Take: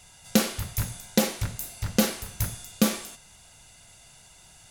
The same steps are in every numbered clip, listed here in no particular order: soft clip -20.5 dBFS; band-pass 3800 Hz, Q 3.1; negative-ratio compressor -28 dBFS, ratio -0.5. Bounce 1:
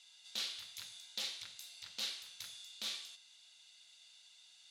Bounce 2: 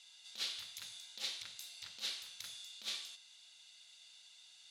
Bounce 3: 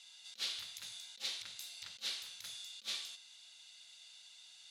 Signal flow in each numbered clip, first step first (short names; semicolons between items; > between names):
soft clip > band-pass > negative-ratio compressor; soft clip > negative-ratio compressor > band-pass; negative-ratio compressor > soft clip > band-pass